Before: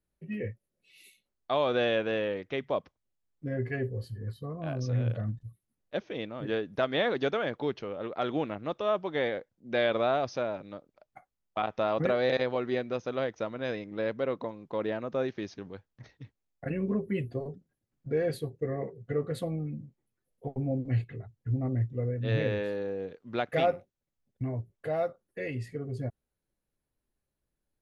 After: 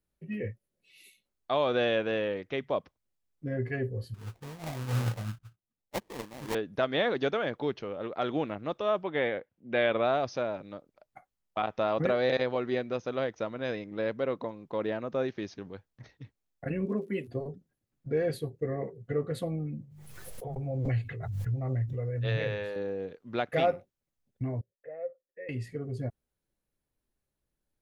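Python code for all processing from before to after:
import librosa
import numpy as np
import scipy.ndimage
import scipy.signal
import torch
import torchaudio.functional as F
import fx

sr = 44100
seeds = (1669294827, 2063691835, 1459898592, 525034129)

y = fx.chain(x, sr, fx.lowpass(hz=5400.0, slope=24),
    fx.sample_hold(seeds[0], rate_hz=1400.0, jitter_pct=20),
    fx.upward_expand(threshold_db=-43.0, expansion=1.5), at=(4.14, 6.55))
y = fx.chain(y, sr, fx.highpass(hz=43.0, slope=12),
    fx.high_shelf_res(hz=3900.0, db=-10.5, q=1.5), at=(9.03, 10.05))
y = fx.highpass(y, sr, hz=200.0, slope=24, at=(16.85, 17.27), fade=0.02)
y = fx.dmg_crackle(y, sr, seeds[1], per_s=68.0, level_db=-54.0, at=(16.85, 17.27), fade=0.02)
y = fx.chain(y, sr, fx.peak_eq(hz=270.0, db=-12.5, octaves=1.0),
    fx.hum_notches(base_hz=50, count=5),
    fx.pre_swell(db_per_s=29.0), at=(19.82, 22.76))
y = fx.chain(y, sr, fx.formant_cascade(vowel='e'),
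    fx.low_shelf(hz=410.0, db=-6.0), at=(24.61, 25.49))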